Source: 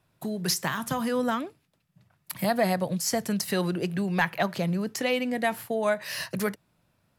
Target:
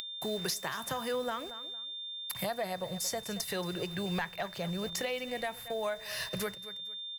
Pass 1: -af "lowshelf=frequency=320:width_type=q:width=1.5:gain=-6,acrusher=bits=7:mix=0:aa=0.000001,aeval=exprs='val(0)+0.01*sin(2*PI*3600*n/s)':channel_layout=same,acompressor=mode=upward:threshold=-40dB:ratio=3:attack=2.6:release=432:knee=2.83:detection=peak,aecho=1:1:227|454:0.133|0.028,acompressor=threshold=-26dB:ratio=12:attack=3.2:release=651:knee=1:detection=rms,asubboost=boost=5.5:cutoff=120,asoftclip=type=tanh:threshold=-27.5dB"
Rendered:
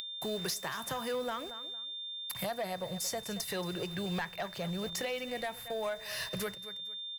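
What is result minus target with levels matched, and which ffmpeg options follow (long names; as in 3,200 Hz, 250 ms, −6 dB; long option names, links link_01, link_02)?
soft clipping: distortion +10 dB
-af "lowshelf=frequency=320:width_type=q:width=1.5:gain=-6,acrusher=bits=7:mix=0:aa=0.000001,aeval=exprs='val(0)+0.01*sin(2*PI*3600*n/s)':channel_layout=same,acompressor=mode=upward:threshold=-40dB:ratio=3:attack=2.6:release=432:knee=2.83:detection=peak,aecho=1:1:227|454:0.133|0.028,acompressor=threshold=-26dB:ratio=12:attack=3.2:release=651:knee=1:detection=rms,asubboost=boost=5.5:cutoff=120,asoftclip=type=tanh:threshold=-21dB"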